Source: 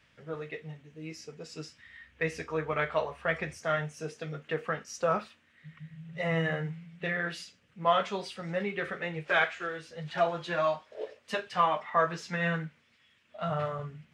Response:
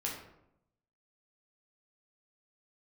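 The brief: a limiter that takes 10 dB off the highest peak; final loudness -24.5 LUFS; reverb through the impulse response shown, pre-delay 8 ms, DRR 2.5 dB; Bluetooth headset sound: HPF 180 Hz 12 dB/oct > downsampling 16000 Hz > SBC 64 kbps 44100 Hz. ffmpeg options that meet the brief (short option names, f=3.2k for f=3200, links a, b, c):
-filter_complex "[0:a]alimiter=limit=-23.5dB:level=0:latency=1,asplit=2[a][b];[1:a]atrim=start_sample=2205,adelay=8[c];[b][c]afir=irnorm=-1:irlink=0,volume=-5dB[d];[a][d]amix=inputs=2:normalize=0,highpass=180,aresample=16000,aresample=44100,volume=10dB" -ar 44100 -c:a sbc -b:a 64k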